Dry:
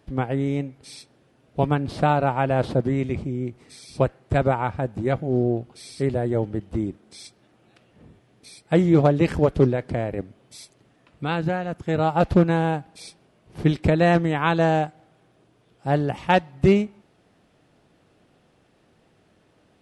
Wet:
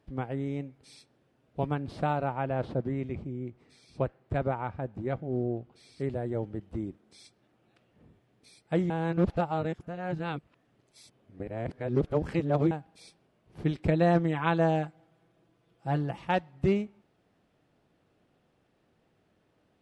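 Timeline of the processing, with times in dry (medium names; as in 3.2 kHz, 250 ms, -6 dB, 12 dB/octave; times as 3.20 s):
2.27–6.00 s: low-pass 3.7 kHz 6 dB/octave
8.90–12.71 s: reverse
13.87–16.25 s: comb 6 ms, depth 61%
whole clip: treble shelf 4.6 kHz -5.5 dB; trim -9 dB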